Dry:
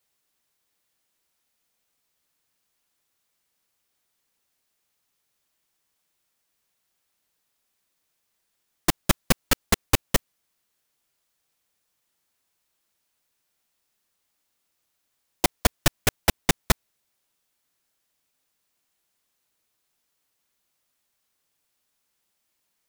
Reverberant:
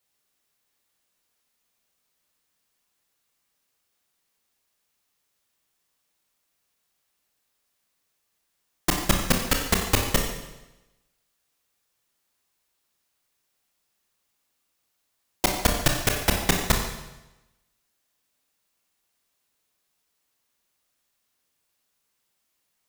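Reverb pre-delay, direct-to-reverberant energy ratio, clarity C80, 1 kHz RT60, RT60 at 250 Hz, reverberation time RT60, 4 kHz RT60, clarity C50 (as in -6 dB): 27 ms, 1.5 dB, 6.5 dB, 1.0 s, 1.0 s, 1.0 s, 0.95 s, 4.5 dB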